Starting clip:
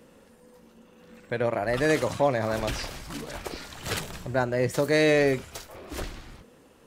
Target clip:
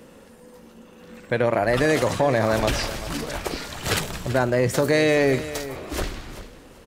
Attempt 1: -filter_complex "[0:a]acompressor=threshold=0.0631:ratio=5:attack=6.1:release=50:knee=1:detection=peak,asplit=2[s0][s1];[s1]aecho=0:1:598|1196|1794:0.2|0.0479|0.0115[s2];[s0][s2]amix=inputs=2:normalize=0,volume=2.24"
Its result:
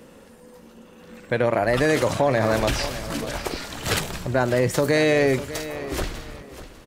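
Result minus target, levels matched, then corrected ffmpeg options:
echo 209 ms late
-filter_complex "[0:a]acompressor=threshold=0.0631:ratio=5:attack=6.1:release=50:knee=1:detection=peak,asplit=2[s0][s1];[s1]aecho=0:1:389|778|1167:0.2|0.0479|0.0115[s2];[s0][s2]amix=inputs=2:normalize=0,volume=2.24"

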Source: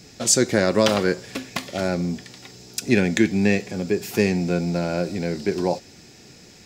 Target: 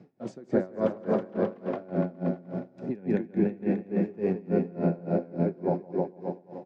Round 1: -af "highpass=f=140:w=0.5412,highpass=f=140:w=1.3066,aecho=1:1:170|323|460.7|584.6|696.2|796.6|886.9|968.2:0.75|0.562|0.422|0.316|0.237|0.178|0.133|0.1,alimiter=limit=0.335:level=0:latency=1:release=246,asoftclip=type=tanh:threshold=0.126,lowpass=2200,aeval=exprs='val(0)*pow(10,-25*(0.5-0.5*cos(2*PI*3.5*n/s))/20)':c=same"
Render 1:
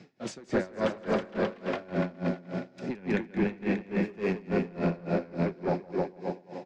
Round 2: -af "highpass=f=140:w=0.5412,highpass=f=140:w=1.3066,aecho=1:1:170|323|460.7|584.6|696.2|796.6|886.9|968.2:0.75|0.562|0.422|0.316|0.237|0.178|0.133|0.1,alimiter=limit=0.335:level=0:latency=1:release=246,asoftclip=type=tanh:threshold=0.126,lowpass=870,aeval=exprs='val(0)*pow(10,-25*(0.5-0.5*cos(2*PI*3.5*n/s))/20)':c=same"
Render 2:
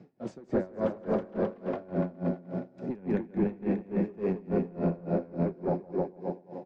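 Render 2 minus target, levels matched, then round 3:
saturation: distortion +14 dB
-af "highpass=f=140:w=0.5412,highpass=f=140:w=1.3066,aecho=1:1:170|323|460.7|584.6|696.2|796.6|886.9|968.2:0.75|0.562|0.422|0.316|0.237|0.178|0.133|0.1,alimiter=limit=0.335:level=0:latency=1:release=246,asoftclip=type=tanh:threshold=0.398,lowpass=870,aeval=exprs='val(0)*pow(10,-25*(0.5-0.5*cos(2*PI*3.5*n/s))/20)':c=same"

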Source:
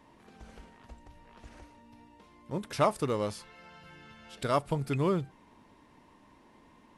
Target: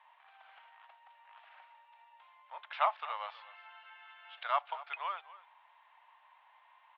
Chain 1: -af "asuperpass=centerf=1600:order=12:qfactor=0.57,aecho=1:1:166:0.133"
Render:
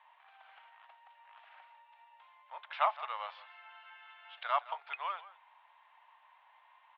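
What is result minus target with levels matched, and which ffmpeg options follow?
echo 81 ms early
-af "asuperpass=centerf=1600:order=12:qfactor=0.57,aecho=1:1:247:0.133"

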